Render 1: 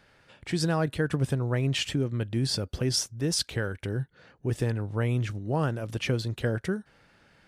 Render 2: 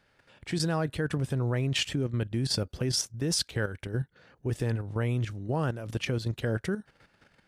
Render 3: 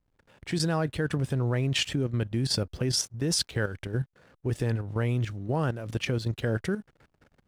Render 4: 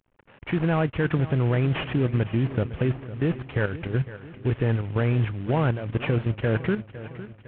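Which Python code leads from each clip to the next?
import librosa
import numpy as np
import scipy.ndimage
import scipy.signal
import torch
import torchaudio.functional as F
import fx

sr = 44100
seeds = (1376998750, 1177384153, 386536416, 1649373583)

y1 = fx.level_steps(x, sr, step_db=10)
y1 = F.gain(torch.from_numpy(y1), 2.5).numpy()
y2 = fx.backlash(y1, sr, play_db=-54.5)
y2 = F.gain(torch.from_numpy(y2), 1.5).numpy()
y3 = fx.cvsd(y2, sr, bps=16000)
y3 = fx.echo_feedback(y3, sr, ms=507, feedback_pct=56, wet_db=-15.0)
y3 = F.gain(torch.from_numpy(y3), 5.0).numpy()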